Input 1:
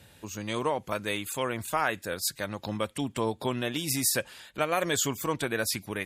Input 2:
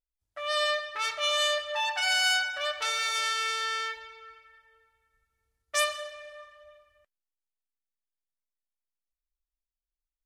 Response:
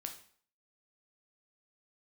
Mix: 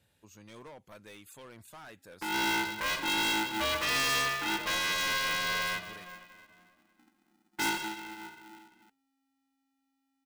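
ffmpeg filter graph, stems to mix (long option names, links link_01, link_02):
-filter_complex "[0:a]volume=28.5dB,asoftclip=hard,volume=-28.5dB,volume=-16.5dB[link_01];[1:a]lowshelf=frequency=110:gain=9,bandreject=frequency=105.4:width_type=h:width=4,bandreject=frequency=210.8:width_type=h:width=4,bandreject=frequency=316.2:width_type=h:width=4,bandreject=frequency=421.6:width_type=h:width=4,bandreject=frequency=527:width_type=h:width=4,bandreject=frequency=632.4:width_type=h:width=4,bandreject=frequency=737.8:width_type=h:width=4,bandreject=frequency=843.2:width_type=h:width=4,bandreject=frequency=948.6:width_type=h:width=4,bandreject=frequency=1054:width_type=h:width=4,bandreject=frequency=1159.4:width_type=h:width=4,aeval=exprs='val(0)*sgn(sin(2*PI*270*n/s))':channel_layout=same,adelay=1850,volume=1.5dB[link_02];[link_01][link_02]amix=inputs=2:normalize=0,asoftclip=type=tanh:threshold=-24dB"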